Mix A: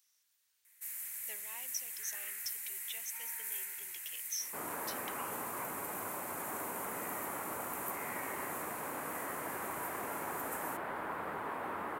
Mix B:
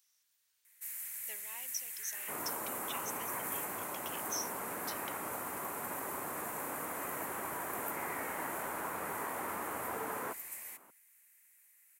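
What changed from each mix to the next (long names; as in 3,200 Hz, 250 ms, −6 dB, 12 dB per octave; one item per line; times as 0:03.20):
second sound: entry −2.25 s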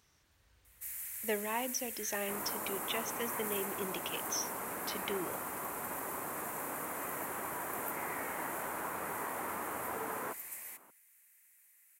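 speech: remove first difference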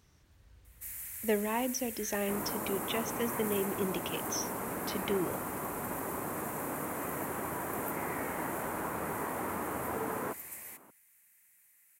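master: add low-shelf EQ 440 Hz +11 dB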